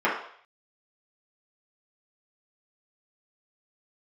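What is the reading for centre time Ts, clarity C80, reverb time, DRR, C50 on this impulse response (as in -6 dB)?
37 ms, 8.5 dB, 0.60 s, -7.5 dB, 4.5 dB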